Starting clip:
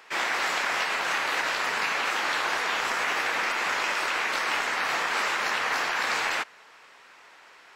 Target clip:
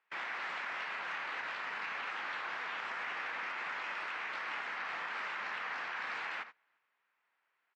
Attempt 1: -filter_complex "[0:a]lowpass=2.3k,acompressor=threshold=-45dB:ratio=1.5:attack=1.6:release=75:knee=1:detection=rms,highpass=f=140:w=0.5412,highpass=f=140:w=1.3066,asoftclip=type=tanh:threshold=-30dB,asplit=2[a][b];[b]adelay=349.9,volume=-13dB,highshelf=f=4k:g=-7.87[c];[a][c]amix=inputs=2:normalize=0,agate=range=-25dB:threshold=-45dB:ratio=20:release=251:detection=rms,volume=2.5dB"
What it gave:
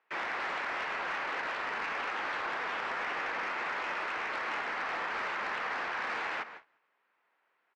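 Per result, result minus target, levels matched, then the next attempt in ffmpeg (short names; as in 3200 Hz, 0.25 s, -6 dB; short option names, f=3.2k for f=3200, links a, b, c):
500 Hz band +5.5 dB; compressor: peak gain reduction -2.5 dB
-filter_complex "[0:a]lowpass=2.3k,acompressor=threshold=-45dB:ratio=1.5:attack=1.6:release=75:knee=1:detection=rms,highpass=f=140:w=0.5412,highpass=f=140:w=1.3066,equalizer=f=400:t=o:w=2.6:g=-9.5,asoftclip=type=tanh:threshold=-30dB,asplit=2[a][b];[b]adelay=349.9,volume=-13dB,highshelf=f=4k:g=-7.87[c];[a][c]amix=inputs=2:normalize=0,agate=range=-25dB:threshold=-45dB:ratio=20:release=251:detection=rms,volume=2.5dB"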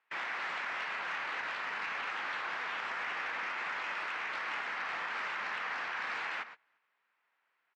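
compressor: peak gain reduction -2.5 dB
-filter_complex "[0:a]lowpass=2.3k,acompressor=threshold=-53dB:ratio=1.5:attack=1.6:release=75:knee=1:detection=rms,highpass=f=140:w=0.5412,highpass=f=140:w=1.3066,equalizer=f=400:t=o:w=2.6:g=-9.5,asoftclip=type=tanh:threshold=-30dB,asplit=2[a][b];[b]adelay=349.9,volume=-13dB,highshelf=f=4k:g=-7.87[c];[a][c]amix=inputs=2:normalize=0,agate=range=-25dB:threshold=-45dB:ratio=20:release=251:detection=rms,volume=2.5dB"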